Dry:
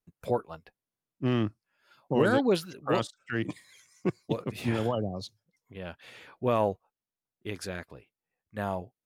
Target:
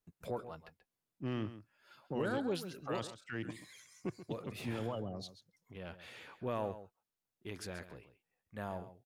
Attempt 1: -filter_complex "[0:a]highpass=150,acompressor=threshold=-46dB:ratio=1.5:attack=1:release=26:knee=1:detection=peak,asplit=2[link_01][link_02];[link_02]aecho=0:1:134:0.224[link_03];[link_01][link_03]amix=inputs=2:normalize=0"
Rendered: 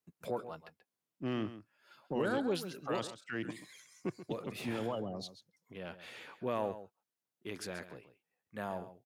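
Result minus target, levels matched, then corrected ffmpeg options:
125 Hz band −4.5 dB; downward compressor: peak gain reduction −2.5 dB
-filter_complex "[0:a]acompressor=threshold=-54dB:ratio=1.5:attack=1:release=26:knee=1:detection=peak,asplit=2[link_01][link_02];[link_02]aecho=0:1:134:0.224[link_03];[link_01][link_03]amix=inputs=2:normalize=0"

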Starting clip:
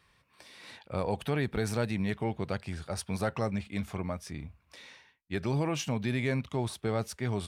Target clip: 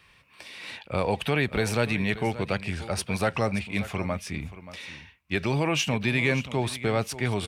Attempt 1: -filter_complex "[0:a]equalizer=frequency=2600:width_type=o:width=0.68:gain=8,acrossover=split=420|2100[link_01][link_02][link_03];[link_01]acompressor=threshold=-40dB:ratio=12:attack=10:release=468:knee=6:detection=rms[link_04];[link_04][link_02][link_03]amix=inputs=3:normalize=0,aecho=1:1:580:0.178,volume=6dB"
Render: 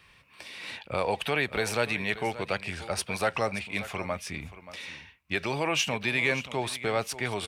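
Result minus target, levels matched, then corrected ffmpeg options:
downward compressor: peak gain reduction +10.5 dB
-filter_complex "[0:a]equalizer=frequency=2600:width_type=o:width=0.68:gain=8,acrossover=split=420|2100[link_01][link_02][link_03];[link_01]acompressor=threshold=-28dB:ratio=12:attack=10:release=468:knee=6:detection=rms[link_04];[link_04][link_02][link_03]amix=inputs=3:normalize=0,aecho=1:1:580:0.178,volume=6dB"

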